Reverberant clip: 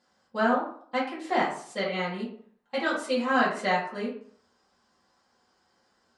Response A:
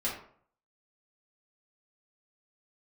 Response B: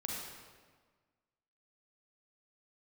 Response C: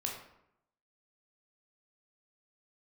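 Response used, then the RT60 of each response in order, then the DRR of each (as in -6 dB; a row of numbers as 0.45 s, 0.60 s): A; 0.55 s, 1.5 s, 0.80 s; -8.5 dB, -3.0 dB, -0.5 dB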